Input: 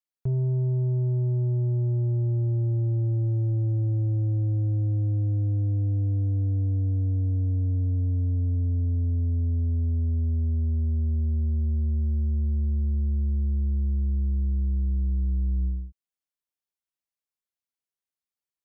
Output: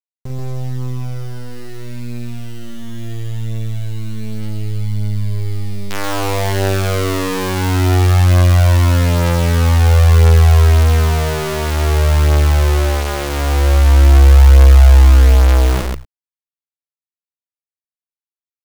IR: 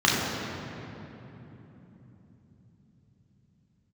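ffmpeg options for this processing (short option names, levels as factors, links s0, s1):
-filter_complex "[0:a]asubboost=boost=10:cutoff=51,acrusher=bits=4:dc=4:mix=0:aa=0.000001,adynamicequalizer=threshold=0.0141:dfrequency=240:dqfactor=2:tfrequency=240:tqfactor=2:attack=5:release=100:ratio=0.375:range=3:mode=cutabove:tftype=bell,asplit=2[s0][s1];[s1]aecho=0:1:46.65|134.1:0.562|0.708[s2];[s0][s2]amix=inputs=2:normalize=0,volume=1.41"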